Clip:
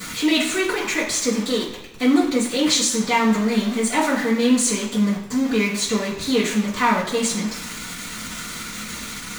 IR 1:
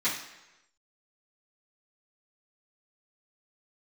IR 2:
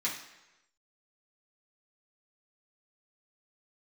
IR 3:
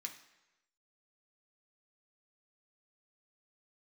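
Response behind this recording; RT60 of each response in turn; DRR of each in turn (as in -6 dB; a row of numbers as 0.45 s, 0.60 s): 1; 1.0 s, 1.0 s, 1.0 s; -13.5 dB, -7.5 dB, 1.5 dB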